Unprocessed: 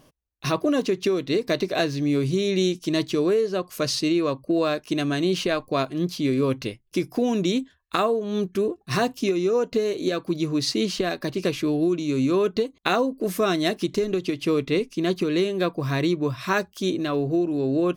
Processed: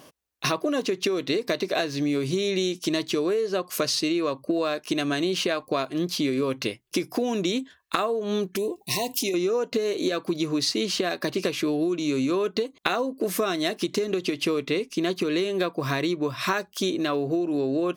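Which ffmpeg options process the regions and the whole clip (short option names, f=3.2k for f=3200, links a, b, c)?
-filter_complex "[0:a]asettb=1/sr,asplit=3[a][b][c];[a]atrim=end=8.564[d];[b]atrim=start=8.56:end=9.34,asetpts=PTS-STARTPTS,afade=t=in:d=0.004:c=qsin,afade=t=out:st=0.776:d=0.004:c=qsin,acompressor=threshold=-34dB:ratio=2:attack=3.2:release=140:knee=1:detection=peak,asuperstop=centerf=1400:order=20:qfactor=1.8,aemphasis=mode=production:type=50kf[e];[c]atrim=start=9.336[f];[d][e]acrossfade=d=0.004:c1=hsin:c2=qsin[g];[g][f]acrossfade=d=0.004:c1=qsin:c2=hsin,highpass=f=350:p=1,acompressor=threshold=-31dB:ratio=6,volume=8.5dB"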